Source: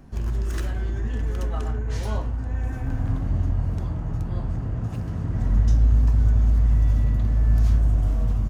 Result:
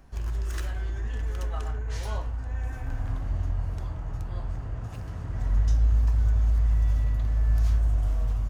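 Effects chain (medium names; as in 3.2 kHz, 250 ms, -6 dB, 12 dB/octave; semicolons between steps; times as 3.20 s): peaking EQ 200 Hz -11.5 dB 2.1 oct; trim -1.5 dB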